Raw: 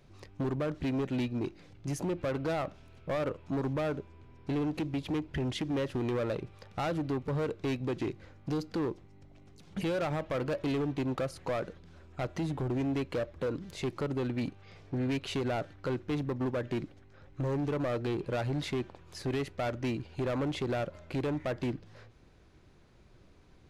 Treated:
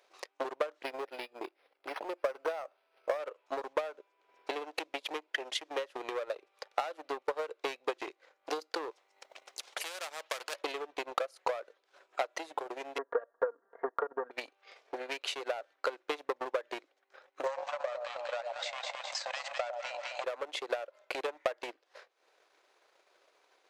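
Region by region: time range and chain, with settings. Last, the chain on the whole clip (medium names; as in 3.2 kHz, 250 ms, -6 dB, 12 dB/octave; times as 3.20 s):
0.83–3.19 s: low-pass 10 kHz + decimation joined by straight lines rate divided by 6×
8.91–10.61 s: peaking EQ 6.9 kHz +3 dB 2.7 oct + spectrum-flattening compressor 2:1
12.98–14.31 s: steep low-pass 1.8 kHz 96 dB/octave + comb 4.3 ms, depth 67%
17.46–20.24 s: brick-wall FIR band-pass 500–8500 Hz + echo whose repeats swap between lows and highs 103 ms, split 930 Hz, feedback 62%, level -2.5 dB + level flattener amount 50%
whole clip: inverse Chebyshev high-pass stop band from 190 Hz, stop band 50 dB; compression 6:1, threshold -36 dBFS; transient shaper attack +11 dB, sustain -10 dB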